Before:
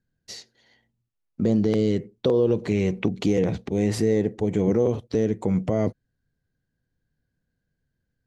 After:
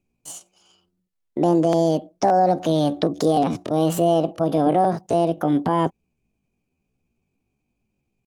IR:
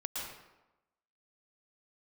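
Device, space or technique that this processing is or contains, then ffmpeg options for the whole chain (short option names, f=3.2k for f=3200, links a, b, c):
chipmunk voice: -af "asetrate=68011,aresample=44100,atempo=0.64842,volume=3dB"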